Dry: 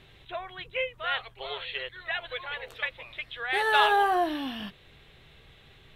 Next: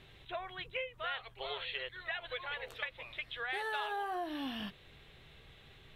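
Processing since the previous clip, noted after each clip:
downward compressor 6 to 1, threshold −32 dBFS, peak gain reduction 14 dB
level −3 dB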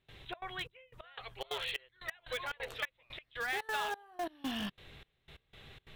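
gate pattern ".xxx.xxx...x." 179 BPM −24 dB
in parallel at −10.5 dB: wrap-around overflow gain 34 dB
on the sum: level +1.5 dB

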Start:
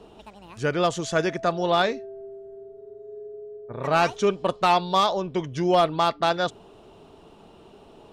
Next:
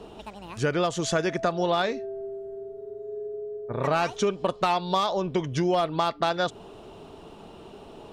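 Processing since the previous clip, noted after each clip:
downward compressor 5 to 1, threshold −26 dBFS, peak gain reduction 10.5 dB
level +4.5 dB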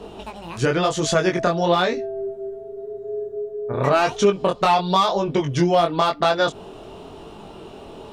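chorus effect 0.95 Hz, delay 19.5 ms, depth 4.4 ms
level +9 dB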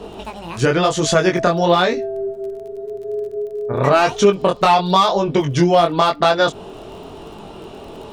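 surface crackle 25 per second −38 dBFS
level +4 dB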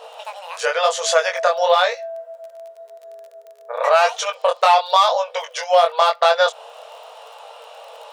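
linear-phase brick-wall high-pass 460 Hz

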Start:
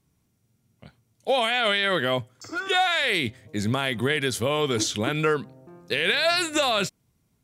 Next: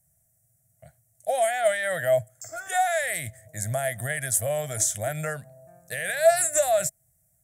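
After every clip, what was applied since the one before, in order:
drawn EQ curve 150 Hz 0 dB, 210 Hz −15 dB, 410 Hz −21 dB, 650 Hz +11 dB, 1,000 Hz −18 dB, 1,800 Hz +2 dB, 2,600 Hz −14 dB, 4,300 Hz −13 dB, 7,900 Hz +14 dB
level −2 dB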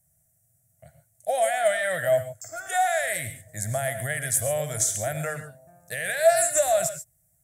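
reverb whose tail is shaped and stops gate 160 ms rising, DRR 9 dB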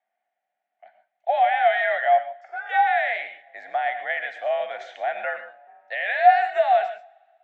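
single-sideband voice off tune +60 Hz 440–3,200 Hz
coupled-rooms reverb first 0.39 s, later 1.9 s, from −18 dB, DRR 14 dB
level +4 dB

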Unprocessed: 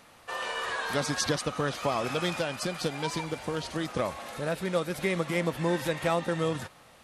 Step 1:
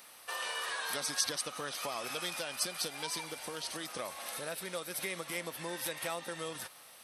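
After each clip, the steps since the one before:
downward compressor 2 to 1, threshold −35 dBFS, peak gain reduction 7.5 dB
RIAA equalisation recording
notch filter 7,000 Hz, Q 5.7
level −3.5 dB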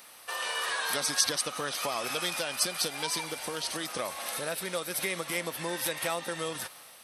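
automatic gain control gain up to 3 dB
level +3 dB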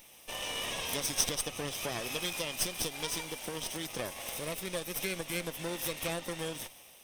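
lower of the sound and its delayed copy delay 0.35 ms
level −2.5 dB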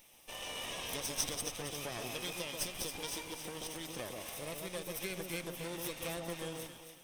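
delay that swaps between a low-pass and a high-pass 136 ms, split 1,200 Hz, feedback 56%, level −3 dB
level −6 dB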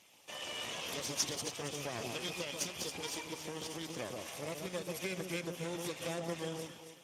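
level +2 dB
Speex 15 kbit/s 32,000 Hz

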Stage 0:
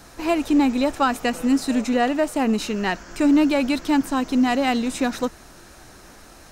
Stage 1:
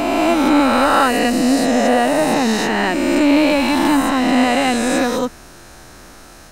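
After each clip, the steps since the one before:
peak hold with a rise ahead of every peak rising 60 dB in 2.99 s
level +1.5 dB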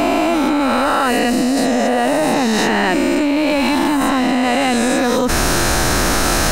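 envelope flattener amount 100%
level −4.5 dB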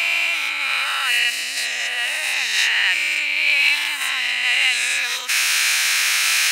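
high-pass with resonance 2,400 Hz, resonance Q 3.4
level −1 dB

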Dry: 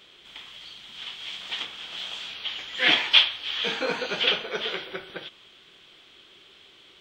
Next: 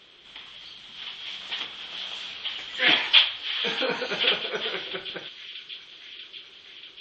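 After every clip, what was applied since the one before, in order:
delay with a high-pass on its return 639 ms, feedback 73%, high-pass 2,800 Hz, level −13 dB
gate on every frequency bin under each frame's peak −30 dB strong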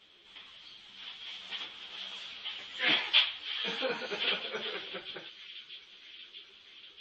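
string-ensemble chorus
level −4.5 dB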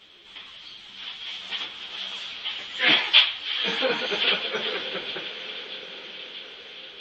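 feedback delay with all-pass diffusion 974 ms, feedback 51%, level −13 dB
level +8.5 dB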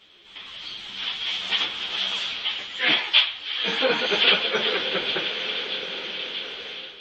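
automatic gain control gain up to 10 dB
level −2.5 dB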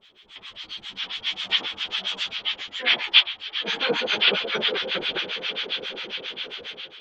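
two-band tremolo in antiphase 7.4 Hz, depth 100%, crossover 890 Hz
level +3 dB

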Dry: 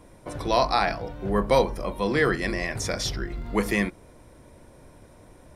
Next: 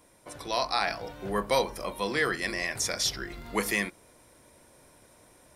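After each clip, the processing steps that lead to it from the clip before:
spectral tilt +2.5 dB per octave
speech leveller within 4 dB 0.5 s
level −3.5 dB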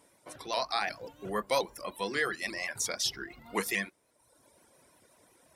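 high-pass filter 150 Hz 6 dB per octave
reverb reduction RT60 0.98 s
pitch modulation by a square or saw wave saw up 5.6 Hz, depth 100 cents
level −2.5 dB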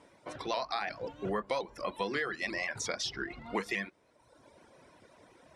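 high-frequency loss of the air 80 metres
downward compressor 6 to 1, threshold −36 dBFS, peak gain reduction 11.5 dB
high-shelf EQ 7,300 Hz −8 dB
level +6 dB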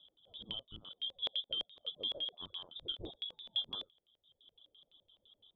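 inverse Chebyshev band-stop filter 870–1,900 Hz, stop band 50 dB
voice inversion scrambler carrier 3,700 Hz
auto-filter low-pass square 5.9 Hz 560–2,900 Hz
level −4 dB

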